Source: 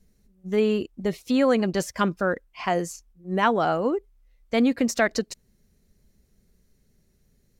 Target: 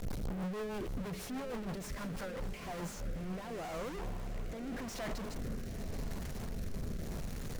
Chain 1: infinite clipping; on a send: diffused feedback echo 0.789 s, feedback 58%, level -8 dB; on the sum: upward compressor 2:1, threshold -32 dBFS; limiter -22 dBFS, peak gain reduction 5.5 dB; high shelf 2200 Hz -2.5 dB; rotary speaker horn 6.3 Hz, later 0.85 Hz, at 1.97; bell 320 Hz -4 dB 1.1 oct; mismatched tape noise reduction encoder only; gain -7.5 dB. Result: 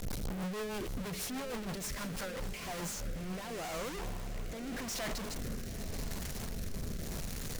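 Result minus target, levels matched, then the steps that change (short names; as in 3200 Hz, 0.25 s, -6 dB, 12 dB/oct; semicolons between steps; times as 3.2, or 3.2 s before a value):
4000 Hz band +5.0 dB
change: high shelf 2200 Hz -12 dB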